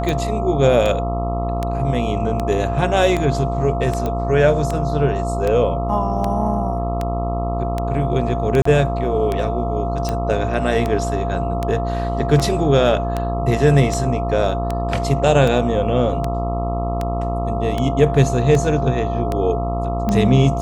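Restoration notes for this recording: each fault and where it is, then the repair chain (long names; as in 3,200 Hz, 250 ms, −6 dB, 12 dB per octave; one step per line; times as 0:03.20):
mains buzz 60 Hz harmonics 22 −23 dBFS
scratch tick 78 rpm −9 dBFS
whistle 690 Hz −24 dBFS
0:04.06: click −11 dBFS
0:08.62–0:08.65: drop-out 34 ms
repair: click removal
notch filter 690 Hz, Q 30
hum removal 60 Hz, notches 22
repair the gap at 0:08.62, 34 ms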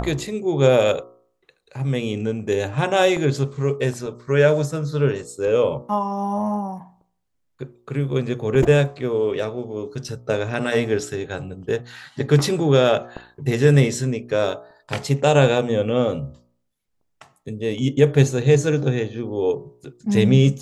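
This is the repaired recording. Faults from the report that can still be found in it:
none of them is left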